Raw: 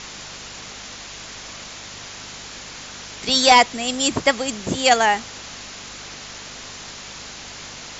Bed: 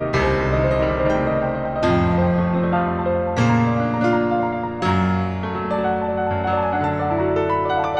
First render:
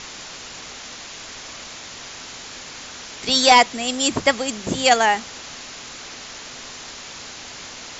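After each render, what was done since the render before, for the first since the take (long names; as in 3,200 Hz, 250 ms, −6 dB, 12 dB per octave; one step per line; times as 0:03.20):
hum removal 50 Hz, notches 4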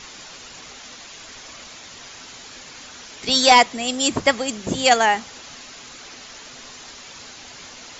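broadband denoise 6 dB, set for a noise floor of −37 dBFS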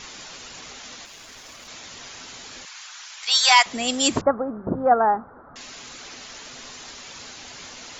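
0:01.05–0:01.68: mu-law and A-law mismatch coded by A
0:02.65–0:03.66: high-pass filter 920 Hz 24 dB per octave
0:04.21–0:05.56: elliptic low-pass filter 1,400 Hz, stop band 50 dB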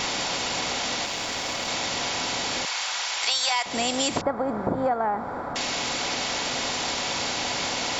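compressor on every frequency bin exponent 0.6
downward compressor 10 to 1, threshold −21 dBFS, peak gain reduction 13 dB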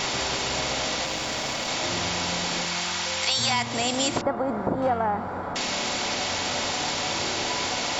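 mix in bed −17.5 dB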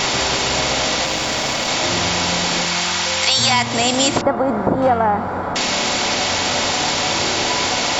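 level +8.5 dB
brickwall limiter −2 dBFS, peak gain reduction 1 dB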